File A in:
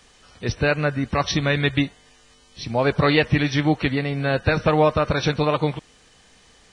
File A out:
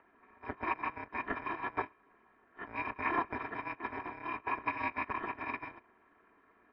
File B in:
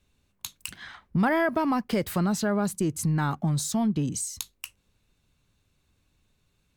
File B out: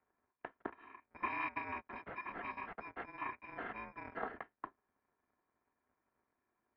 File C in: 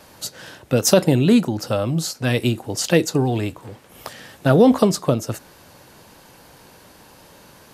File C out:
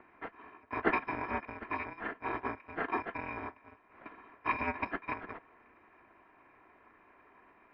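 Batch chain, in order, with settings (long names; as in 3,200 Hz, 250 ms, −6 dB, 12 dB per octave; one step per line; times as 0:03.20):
samples in bit-reversed order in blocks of 256 samples
single-sideband voice off tune −350 Hz 510–2,200 Hz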